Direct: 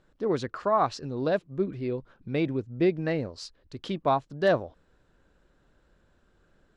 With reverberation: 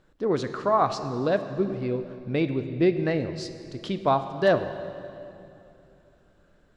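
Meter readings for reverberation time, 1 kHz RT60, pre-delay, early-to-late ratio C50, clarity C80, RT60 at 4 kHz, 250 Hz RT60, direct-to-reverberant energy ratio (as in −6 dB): 2.8 s, 2.6 s, 16 ms, 10.5 dB, 11.0 dB, 2.2 s, 3.4 s, 9.5 dB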